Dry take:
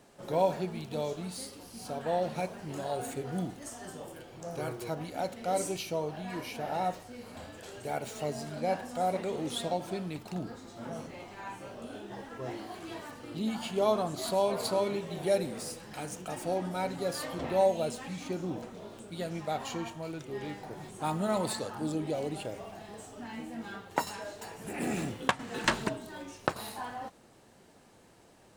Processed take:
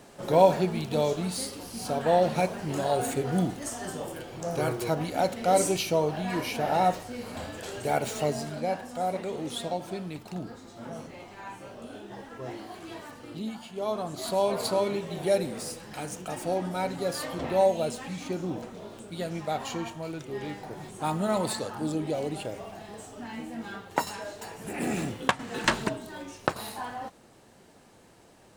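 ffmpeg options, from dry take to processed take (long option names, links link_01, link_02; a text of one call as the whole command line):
ffmpeg -i in.wav -af "volume=19dB,afade=type=out:start_time=8.12:duration=0.6:silence=0.421697,afade=type=out:start_time=13.3:duration=0.37:silence=0.375837,afade=type=in:start_time=13.67:duration=0.83:silence=0.281838" out.wav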